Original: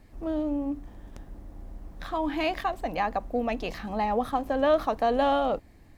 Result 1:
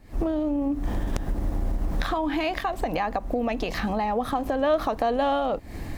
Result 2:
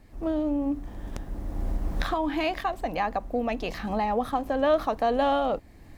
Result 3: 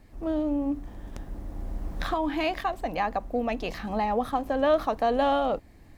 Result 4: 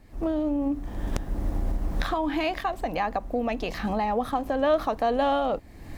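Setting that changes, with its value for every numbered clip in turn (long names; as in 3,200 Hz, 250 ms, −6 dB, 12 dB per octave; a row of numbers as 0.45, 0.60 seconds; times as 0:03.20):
camcorder AGC, rising by: 91, 15, 5.9, 36 dB per second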